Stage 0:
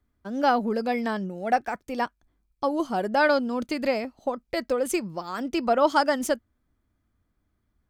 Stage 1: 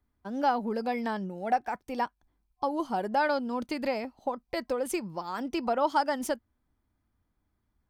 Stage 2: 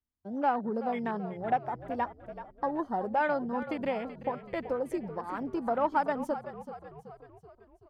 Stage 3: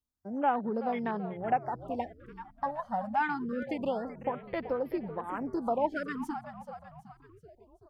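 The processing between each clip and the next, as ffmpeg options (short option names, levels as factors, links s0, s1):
-af "superequalizer=9b=1.78:15b=0.708,acompressor=threshold=0.0562:ratio=1.5,volume=0.668"
-filter_complex "[0:a]afwtdn=0.0126,asplit=7[s0][s1][s2][s3][s4][s5][s6];[s1]adelay=380,afreqshift=-51,volume=0.237[s7];[s2]adelay=760,afreqshift=-102,volume=0.127[s8];[s3]adelay=1140,afreqshift=-153,volume=0.0692[s9];[s4]adelay=1520,afreqshift=-204,volume=0.0372[s10];[s5]adelay=1900,afreqshift=-255,volume=0.0202[s11];[s6]adelay=2280,afreqshift=-306,volume=0.0108[s12];[s0][s7][s8][s9][s10][s11][s12]amix=inputs=7:normalize=0,volume=0.841"
-af "afftfilt=real='re*(1-between(b*sr/1024,360*pow(8000/360,0.5+0.5*sin(2*PI*0.26*pts/sr))/1.41,360*pow(8000/360,0.5+0.5*sin(2*PI*0.26*pts/sr))*1.41))':imag='im*(1-between(b*sr/1024,360*pow(8000/360,0.5+0.5*sin(2*PI*0.26*pts/sr))/1.41,360*pow(8000/360,0.5+0.5*sin(2*PI*0.26*pts/sr))*1.41))':win_size=1024:overlap=0.75"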